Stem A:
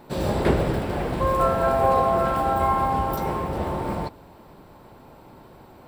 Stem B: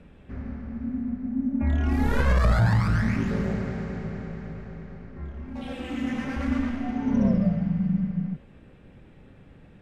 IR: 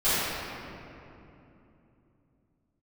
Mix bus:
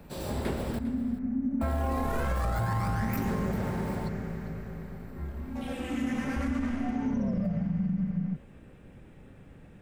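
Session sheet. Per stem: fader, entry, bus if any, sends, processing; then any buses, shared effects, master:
-11.5 dB, 0.00 s, muted 0.79–1.61, no send, echo send -16 dB, dry
-0.5 dB, 0.00 s, no send, no echo send, bell 4000 Hz -6.5 dB 1.4 oct; limiter -19.5 dBFS, peak gain reduction 8 dB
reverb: off
echo: echo 0.4 s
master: high shelf 4500 Hz +10.5 dB; compressor, threshold -25 dBFS, peak gain reduction 5 dB

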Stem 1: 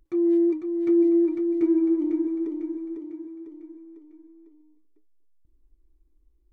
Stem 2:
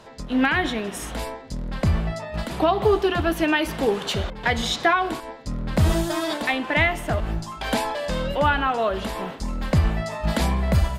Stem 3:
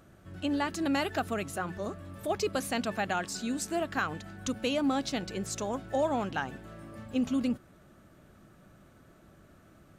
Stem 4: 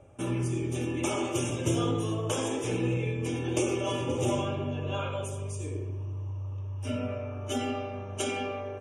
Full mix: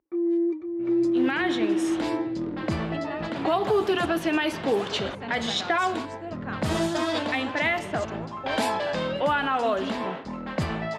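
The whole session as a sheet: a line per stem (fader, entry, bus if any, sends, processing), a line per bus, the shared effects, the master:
-1.5 dB, 0.00 s, no send, Bessel high-pass 290 Hz
-6.5 dB, 0.85 s, no send, HPF 180 Hz 12 dB/oct; AGC gain up to 7.5 dB
-6.0 dB, 2.50 s, no send, dry
-8.5 dB, 0.60 s, no send, Chebyshev low-pass 2500 Hz, order 4; compressor, threshold -32 dBFS, peak gain reduction 8.5 dB; rotary speaker horn 6.3 Hz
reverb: off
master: low-pass opened by the level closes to 1500 Hz, open at -17.5 dBFS; limiter -14.5 dBFS, peak gain reduction 5.5 dB

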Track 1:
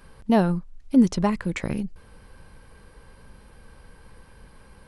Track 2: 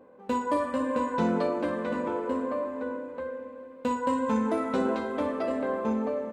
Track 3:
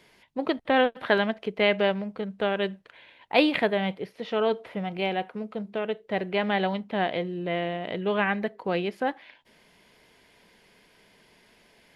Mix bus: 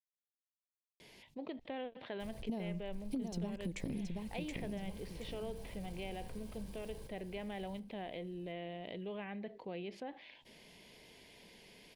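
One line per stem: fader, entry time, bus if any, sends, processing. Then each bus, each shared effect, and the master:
-0.5 dB, 2.20 s, no send, echo send -6 dB, compressor, threshold -29 dBFS, peak gain reduction 16 dB; sample gate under -53.5 dBFS
off
-19.5 dB, 1.00 s, no send, no echo send, treble ducked by the level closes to 3000 Hz, closed at -22.5 dBFS; bell 2100 Hz +4.5 dB 2.1 oct; fast leveller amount 50%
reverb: off
echo: feedback echo 0.724 s, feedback 27%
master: bell 1400 Hz -15 dB 1.1 oct; compressor 3:1, threshold -38 dBFS, peak gain reduction 9.5 dB

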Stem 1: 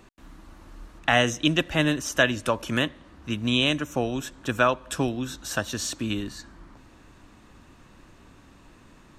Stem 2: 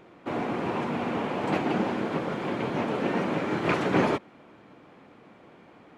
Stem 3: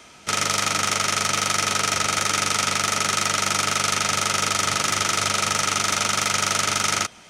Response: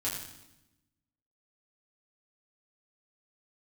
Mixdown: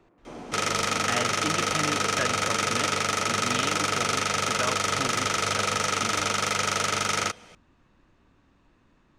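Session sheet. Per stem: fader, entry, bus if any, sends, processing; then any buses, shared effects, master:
-10.0 dB, 0.00 s, no send, LPF 7000 Hz
-11.5 dB, 0.00 s, no send, bell 3500 Hz -11 dB 1.6 oct; negative-ratio compressor -29 dBFS
-2.5 dB, 0.25 s, no send, bell 480 Hz +10.5 dB 0.22 oct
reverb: off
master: high shelf 5300 Hz -7 dB

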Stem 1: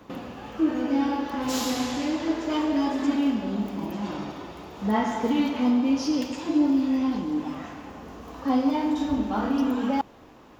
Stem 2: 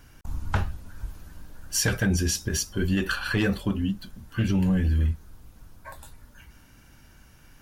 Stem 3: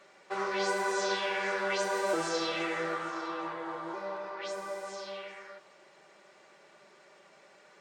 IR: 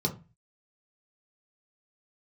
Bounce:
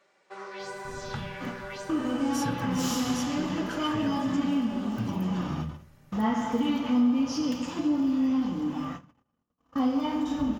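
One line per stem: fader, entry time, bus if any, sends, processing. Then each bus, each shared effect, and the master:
+1.5 dB, 1.30 s, send -17.5 dB, gate -35 dBFS, range -56 dB; small resonant body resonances 1200/3000 Hz, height 9 dB
-9.0 dB, 0.60 s, send -12.5 dB, resonant low shelf 110 Hz -8.5 dB, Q 1.5
-8.0 dB, 0.00 s, no send, dry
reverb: on, RT60 0.30 s, pre-delay 3 ms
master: compressor 1.5:1, threshold -32 dBFS, peak gain reduction 7 dB

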